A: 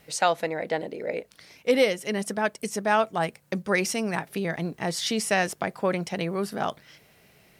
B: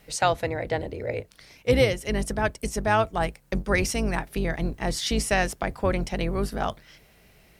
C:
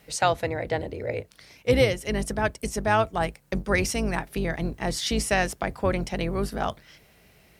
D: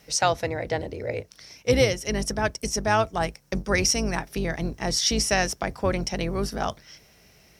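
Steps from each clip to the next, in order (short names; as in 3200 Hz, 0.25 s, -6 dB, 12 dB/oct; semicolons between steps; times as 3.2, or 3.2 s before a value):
octaver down 2 oct, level +2 dB
HPF 50 Hz
bell 5600 Hz +13 dB 0.32 oct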